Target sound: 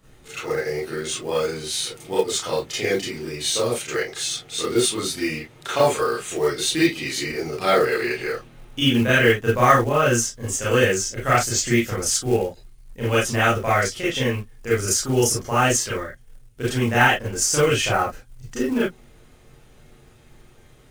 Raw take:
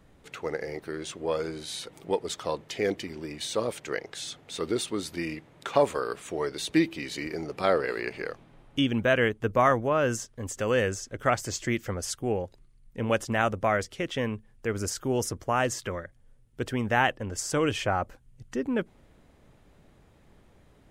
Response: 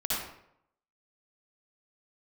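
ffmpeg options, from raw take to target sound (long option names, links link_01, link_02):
-filter_complex "[0:a]highshelf=frequency=3100:gain=8.5[link_01];[1:a]atrim=start_sample=2205,afade=type=out:start_time=0.22:duration=0.01,atrim=end_sample=10143,asetrate=83790,aresample=44100[link_02];[link_01][link_02]afir=irnorm=-1:irlink=0,acrusher=bits=6:mode=log:mix=0:aa=0.000001,volume=4dB"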